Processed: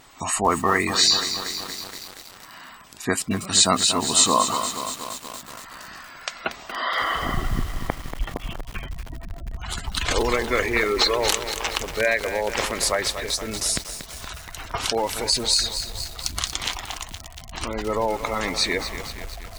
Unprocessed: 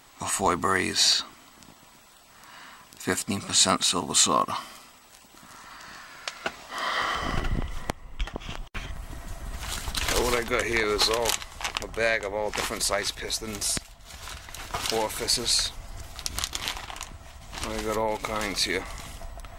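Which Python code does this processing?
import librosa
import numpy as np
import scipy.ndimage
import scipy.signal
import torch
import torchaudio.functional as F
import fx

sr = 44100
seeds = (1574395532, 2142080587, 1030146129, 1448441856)

y = fx.vibrato(x, sr, rate_hz=2.9, depth_cents=30.0)
y = fx.spec_gate(y, sr, threshold_db=-20, keep='strong')
y = fx.echo_crushed(y, sr, ms=235, feedback_pct=80, bits=6, wet_db=-9.0)
y = y * 10.0 ** (3.5 / 20.0)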